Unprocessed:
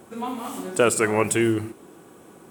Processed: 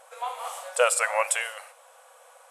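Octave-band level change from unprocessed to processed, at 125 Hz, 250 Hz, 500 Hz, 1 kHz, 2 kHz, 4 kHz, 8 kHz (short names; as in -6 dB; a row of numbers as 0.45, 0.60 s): under -40 dB, under -40 dB, -5.0 dB, 0.0 dB, 0.0 dB, 0.0 dB, 0.0 dB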